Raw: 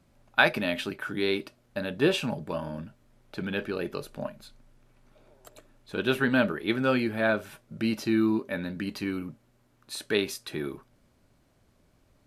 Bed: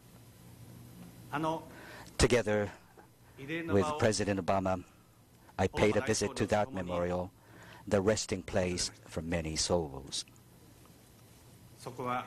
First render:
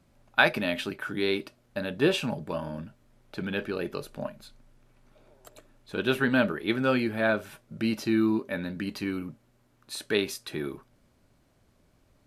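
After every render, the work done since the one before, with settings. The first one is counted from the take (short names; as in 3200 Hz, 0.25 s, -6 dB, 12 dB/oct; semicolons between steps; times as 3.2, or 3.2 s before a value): nothing audible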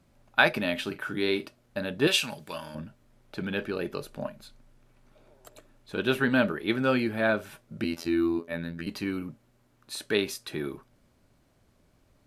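0.82–1.46 doubler 44 ms -13.5 dB; 2.07–2.75 tilt shelf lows -10 dB, about 1300 Hz; 7.84–8.87 robotiser 84 Hz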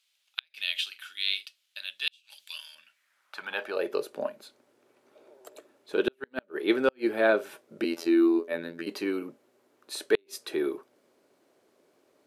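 high-pass sweep 3200 Hz -> 390 Hz, 2.71–4; flipped gate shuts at -11 dBFS, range -42 dB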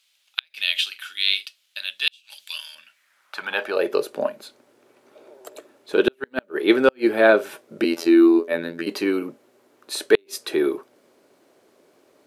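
gain +8 dB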